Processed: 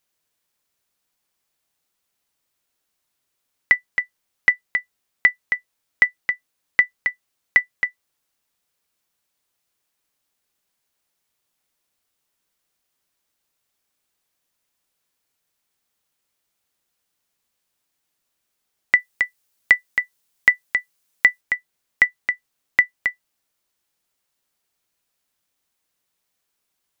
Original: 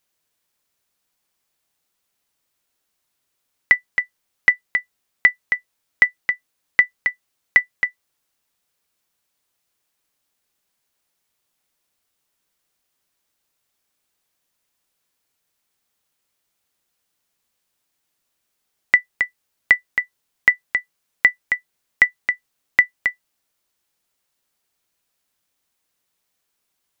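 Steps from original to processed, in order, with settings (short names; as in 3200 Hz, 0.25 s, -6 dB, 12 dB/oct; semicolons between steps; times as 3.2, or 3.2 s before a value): 18.98–21.41 high shelf 3900 Hz +7 dB; gain -1.5 dB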